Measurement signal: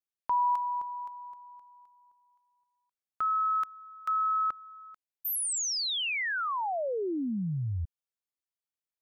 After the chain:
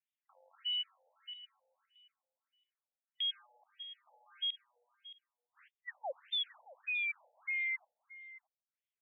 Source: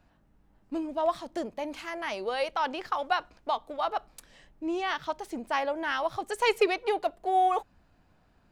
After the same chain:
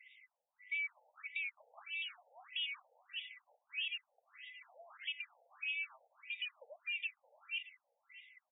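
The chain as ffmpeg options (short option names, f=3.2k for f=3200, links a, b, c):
-af "afftfilt=real='real(if(lt(b,920),b+92*(1-2*mod(floor(b/92),2)),b),0)':imag='imag(if(lt(b,920),b+92*(1-2*mod(floor(b/92),2)),b),0)':win_size=2048:overlap=0.75,equalizer=f=970:w=2.7:g=-11,acompressor=threshold=-42dB:ratio=2:attack=0.34:release=77:knee=6:detection=peak,alimiter=level_in=11dB:limit=-24dB:level=0:latency=1:release=130,volume=-11dB,crystalizer=i=1.5:c=0,aresample=11025,acrusher=bits=5:mode=log:mix=0:aa=0.000001,aresample=44100,aeval=exprs='0.0299*(cos(1*acos(clip(val(0)/0.0299,-1,1)))-cos(1*PI/2))+0.000211*(cos(6*acos(clip(val(0)/0.0299,-1,1)))-cos(6*PI/2))':c=same,bass=f=250:g=9,treble=f=4k:g=1,aecho=1:1:622:0.141,afftfilt=real='re*between(b*sr/1024,630*pow(2700/630,0.5+0.5*sin(2*PI*1.6*pts/sr))/1.41,630*pow(2700/630,0.5+0.5*sin(2*PI*1.6*pts/sr))*1.41)':imag='im*between(b*sr/1024,630*pow(2700/630,0.5+0.5*sin(2*PI*1.6*pts/sr))/1.41,630*pow(2700/630,0.5+0.5*sin(2*PI*1.6*pts/sr))*1.41)':win_size=1024:overlap=0.75,volume=2dB"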